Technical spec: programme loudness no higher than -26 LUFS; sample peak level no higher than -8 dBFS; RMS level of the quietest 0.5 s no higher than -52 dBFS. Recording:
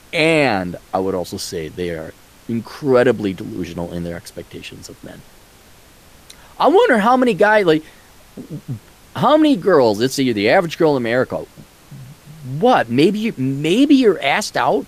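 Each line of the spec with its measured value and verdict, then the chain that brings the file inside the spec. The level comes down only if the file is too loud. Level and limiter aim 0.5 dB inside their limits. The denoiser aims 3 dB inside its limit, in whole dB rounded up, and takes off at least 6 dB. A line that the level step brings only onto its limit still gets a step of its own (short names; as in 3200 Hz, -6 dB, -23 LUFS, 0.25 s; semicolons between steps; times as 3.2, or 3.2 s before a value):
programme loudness -16.0 LUFS: fail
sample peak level -2.5 dBFS: fail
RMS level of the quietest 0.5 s -46 dBFS: fail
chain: gain -10.5 dB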